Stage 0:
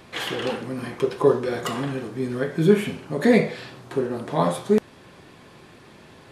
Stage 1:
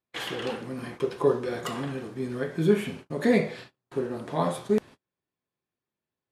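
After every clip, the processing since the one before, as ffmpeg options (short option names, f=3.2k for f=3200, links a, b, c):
-af "agate=range=-38dB:threshold=-36dB:ratio=16:detection=peak,volume=-5dB"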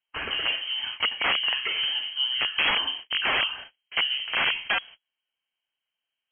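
-af "equalizer=f=2k:w=1.5:g=-2.5,aeval=exprs='(mod(11.9*val(0)+1,2)-1)/11.9':c=same,lowpass=f=2.8k:t=q:w=0.5098,lowpass=f=2.8k:t=q:w=0.6013,lowpass=f=2.8k:t=q:w=0.9,lowpass=f=2.8k:t=q:w=2.563,afreqshift=-3300,volume=5dB"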